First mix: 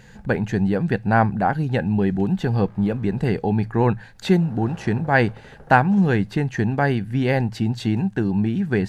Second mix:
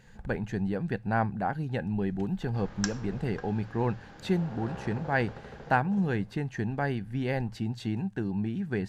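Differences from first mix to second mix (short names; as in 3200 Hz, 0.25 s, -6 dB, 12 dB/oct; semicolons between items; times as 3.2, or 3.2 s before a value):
speech -10.0 dB; second sound: unmuted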